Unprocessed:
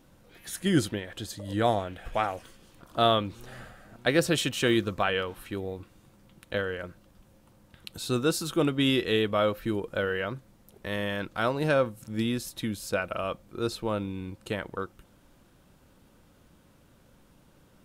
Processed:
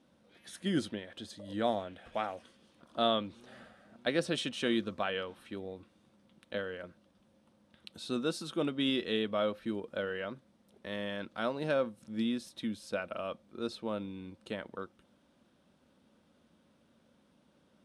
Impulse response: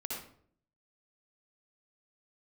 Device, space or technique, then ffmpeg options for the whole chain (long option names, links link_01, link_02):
car door speaker: -af "highpass=100,equalizer=frequency=120:width_type=q:width=4:gain=-9,equalizer=frequency=230:width_type=q:width=4:gain=7,equalizer=frequency=590:width_type=q:width=4:gain=4,equalizer=frequency=3500:width_type=q:width=4:gain=4,equalizer=frequency=7200:width_type=q:width=4:gain=-7,lowpass=frequency=9500:width=0.5412,lowpass=frequency=9500:width=1.3066,volume=-8.5dB"